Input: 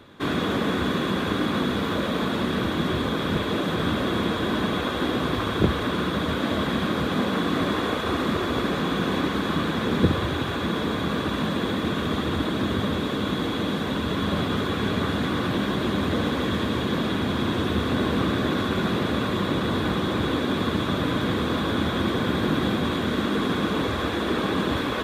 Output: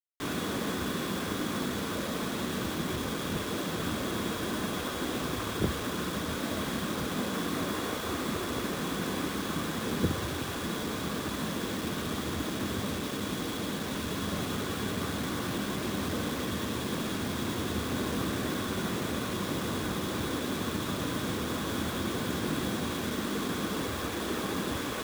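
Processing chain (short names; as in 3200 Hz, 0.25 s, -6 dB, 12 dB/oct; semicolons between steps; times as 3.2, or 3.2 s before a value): bit-crush 5-bit; gain -8.5 dB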